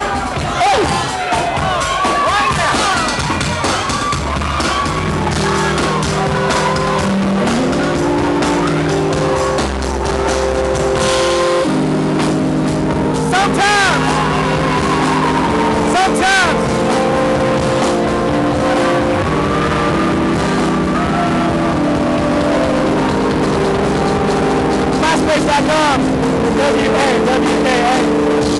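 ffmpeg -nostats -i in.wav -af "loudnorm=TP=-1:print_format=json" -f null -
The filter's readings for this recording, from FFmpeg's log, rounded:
"input_i" : "-14.2",
"input_tp" : "-6.6",
"input_lra" : "2.0",
"input_thresh" : "-24.2",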